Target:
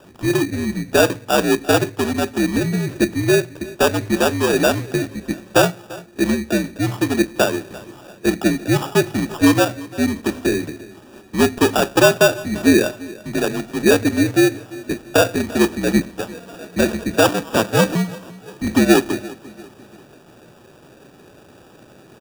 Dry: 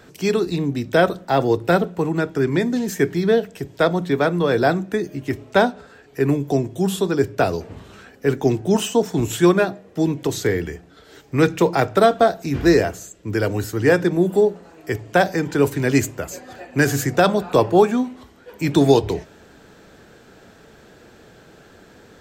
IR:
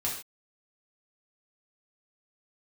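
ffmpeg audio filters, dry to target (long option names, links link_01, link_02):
-filter_complex "[0:a]acrossover=split=170[link_01][link_02];[link_01]acompressor=threshold=-38dB:ratio=6[link_03];[link_03][link_02]amix=inputs=2:normalize=0,asettb=1/sr,asplit=3[link_04][link_05][link_06];[link_04]atrim=end=17.284[link_07];[link_05]atrim=start=17.28:end=17.95,asetpts=PTS-STARTPTS,afade=type=in:duration=0.004:curve=qsin,afade=type=out:start_time=0.666:duration=0.004:curve=qsin,aeval=exprs='val(0)*sin(2*PI*160*n/s)':channel_layout=same[link_08];[link_06]atrim=start=17.946[link_09];[link_07][link_08]acrossfade=duration=0.004:curve1=hsin:curve2=qsin[link_10];[link_10][link_09]acrossfade=duration=0.004:curve1=qsin:curve2=hsin,highpass=frequency=170:width_type=q:width=0.5412,highpass=frequency=170:width_type=q:width=1.307,lowpass=frequency=3200:width_type=q:width=0.5176,lowpass=frequency=3200:width_type=q:width=0.7071,lowpass=frequency=3200:width_type=q:width=1.932,afreqshift=-70,acrusher=samples=21:mix=1:aa=0.000001,aecho=1:1:343|686|1029:0.1|0.042|0.0176,volume=2dB"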